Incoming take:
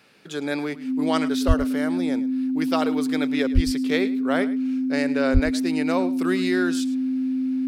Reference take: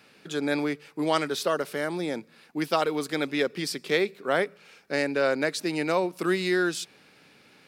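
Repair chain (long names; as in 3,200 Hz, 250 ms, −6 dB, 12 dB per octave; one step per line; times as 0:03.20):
notch filter 260 Hz, Q 30
0:01.47–0:01.59: high-pass filter 140 Hz 24 dB per octave
0:03.54–0:03.66: high-pass filter 140 Hz 24 dB per octave
0:05.33–0:05.45: high-pass filter 140 Hz 24 dB per octave
echo removal 107 ms −17 dB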